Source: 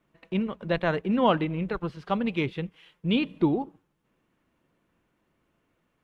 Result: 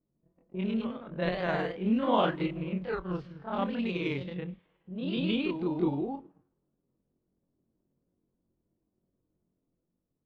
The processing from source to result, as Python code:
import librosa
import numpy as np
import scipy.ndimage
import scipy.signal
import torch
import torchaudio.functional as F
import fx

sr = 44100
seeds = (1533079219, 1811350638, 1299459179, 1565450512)

y = fx.echo_pitch(x, sr, ms=81, semitones=1, count=2, db_per_echo=-3.0)
y = fx.env_lowpass(y, sr, base_hz=410.0, full_db=-19.5)
y = fx.stretch_grains(y, sr, factor=1.7, grain_ms=107.0)
y = y * 10.0 ** (-5.5 / 20.0)